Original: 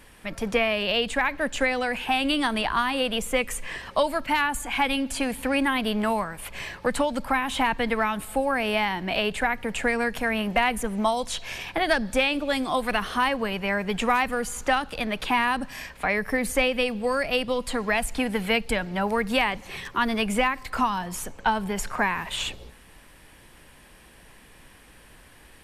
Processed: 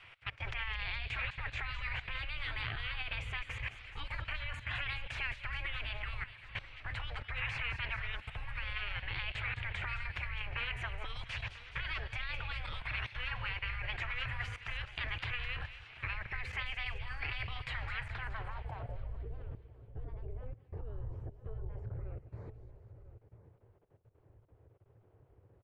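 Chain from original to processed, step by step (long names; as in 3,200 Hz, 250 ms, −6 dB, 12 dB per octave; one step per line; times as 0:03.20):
gate on every frequency bin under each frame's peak −15 dB weak
drawn EQ curve 110 Hz 0 dB, 210 Hz −27 dB, 1,500 Hz −16 dB, 12,000 Hz −19 dB
output level in coarse steps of 19 dB
slap from a distant wall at 170 metres, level −13 dB
low-pass filter sweep 2,400 Hz → 420 Hz, 0:17.84–0:19.23
delay with a high-pass on its return 211 ms, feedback 59%, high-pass 2,800 Hz, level −9 dB
level +17.5 dB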